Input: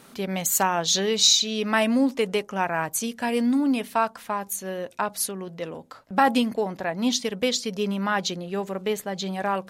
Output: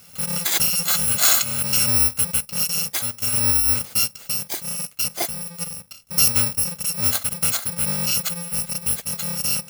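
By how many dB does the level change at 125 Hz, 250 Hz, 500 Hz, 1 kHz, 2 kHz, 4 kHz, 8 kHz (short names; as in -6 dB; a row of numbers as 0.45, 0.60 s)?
+5.5, -10.0, -11.5, -9.5, -1.0, +1.0, +7.5 dB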